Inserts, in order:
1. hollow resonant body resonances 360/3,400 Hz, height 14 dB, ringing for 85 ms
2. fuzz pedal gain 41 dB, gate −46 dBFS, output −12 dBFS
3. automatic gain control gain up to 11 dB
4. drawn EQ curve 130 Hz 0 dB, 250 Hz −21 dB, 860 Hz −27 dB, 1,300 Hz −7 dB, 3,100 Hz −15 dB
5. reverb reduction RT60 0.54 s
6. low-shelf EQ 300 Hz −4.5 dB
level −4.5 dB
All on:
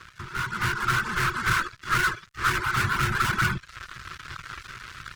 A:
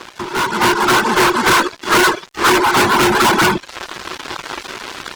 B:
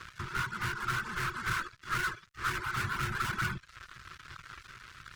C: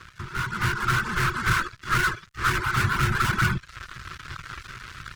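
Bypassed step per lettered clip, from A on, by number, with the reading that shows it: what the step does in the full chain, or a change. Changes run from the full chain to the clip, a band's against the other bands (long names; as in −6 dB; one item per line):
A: 4, 125 Hz band −13.0 dB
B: 3, change in integrated loudness −8.5 LU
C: 6, 125 Hz band +3.5 dB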